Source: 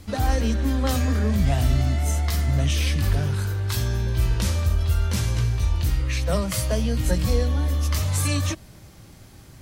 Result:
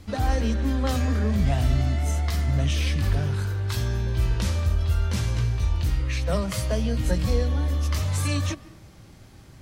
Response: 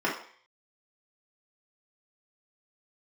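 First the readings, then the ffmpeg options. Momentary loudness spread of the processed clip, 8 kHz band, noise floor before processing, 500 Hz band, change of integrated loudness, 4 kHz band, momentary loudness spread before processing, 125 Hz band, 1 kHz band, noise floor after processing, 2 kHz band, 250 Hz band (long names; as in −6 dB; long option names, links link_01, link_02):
3 LU, −5.5 dB, −46 dBFS, −1.5 dB, −1.5 dB, −3.0 dB, 3 LU, −1.5 dB, −1.5 dB, −48 dBFS, −2.0 dB, −1.5 dB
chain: -filter_complex "[0:a]highshelf=frequency=8300:gain=-9,asplit=2[link_01][link_02];[1:a]atrim=start_sample=2205,adelay=138[link_03];[link_02][link_03]afir=irnorm=-1:irlink=0,volume=-31dB[link_04];[link_01][link_04]amix=inputs=2:normalize=0,volume=-1.5dB"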